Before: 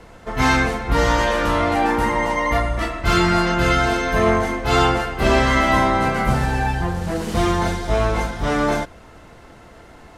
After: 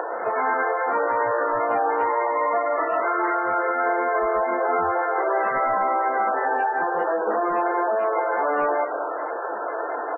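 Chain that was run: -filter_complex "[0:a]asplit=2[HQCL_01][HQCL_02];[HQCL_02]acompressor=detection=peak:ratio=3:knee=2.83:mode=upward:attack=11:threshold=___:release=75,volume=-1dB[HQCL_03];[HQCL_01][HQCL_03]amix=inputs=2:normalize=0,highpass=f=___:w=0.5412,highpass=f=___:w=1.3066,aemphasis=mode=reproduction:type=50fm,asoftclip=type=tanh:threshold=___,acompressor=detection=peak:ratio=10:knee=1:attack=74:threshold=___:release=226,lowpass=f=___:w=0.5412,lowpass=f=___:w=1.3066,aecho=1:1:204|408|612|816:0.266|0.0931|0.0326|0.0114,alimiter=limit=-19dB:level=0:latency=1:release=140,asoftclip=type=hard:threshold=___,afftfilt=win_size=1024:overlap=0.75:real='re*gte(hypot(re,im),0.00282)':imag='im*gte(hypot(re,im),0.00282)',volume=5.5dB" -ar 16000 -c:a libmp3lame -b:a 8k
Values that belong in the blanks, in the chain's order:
-21dB, 440, 440, -8dB, -25dB, 1600, 1600, -21.5dB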